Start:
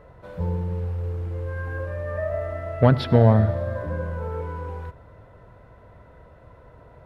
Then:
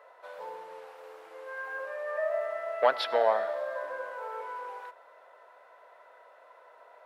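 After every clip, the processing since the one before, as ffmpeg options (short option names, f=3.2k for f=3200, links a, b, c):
-af "highpass=f=600:w=0.5412,highpass=f=600:w=1.3066"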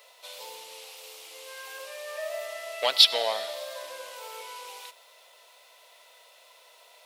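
-af "aexciter=amount=8.2:drive=9.3:freq=2.5k,volume=-4.5dB"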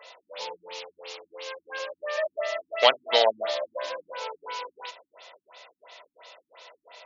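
-af "afftfilt=real='re*lt(b*sr/1024,280*pow(7300/280,0.5+0.5*sin(2*PI*2.9*pts/sr)))':imag='im*lt(b*sr/1024,280*pow(7300/280,0.5+0.5*sin(2*PI*2.9*pts/sr)))':win_size=1024:overlap=0.75,volume=8dB"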